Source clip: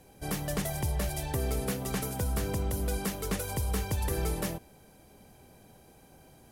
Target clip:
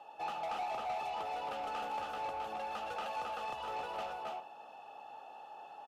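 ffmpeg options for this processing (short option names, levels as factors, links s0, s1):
-filter_complex "[0:a]acompressor=threshold=0.0178:ratio=3,asplit=3[s0][s1][s2];[s0]bandpass=f=730:t=q:w=8,volume=1[s3];[s1]bandpass=f=1090:t=q:w=8,volume=0.501[s4];[s2]bandpass=f=2440:t=q:w=8,volume=0.355[s5];[s3][s4][s5]amix=inputs=3:normalize=0,highshelf=f=9000:g=-6.5,asplit=2[s6][s7];[s7]aecho=0:1:87|295|310|360:0.237|0.501|0.531|0.211[s8];[s6][s8]amix=inputs=2:normalize=0,asetrate=48951,aresample=44100,asplit=2[s9][s10];[s10]highpass=f=720:p=1,volume=6.31,asoftclip=type=tanh:threshold=0.0119[s11];[s9][s11]amix=inputs=2:normalize=0,lowpass=f=5700:p=1,volume=0.501,volume=2.24"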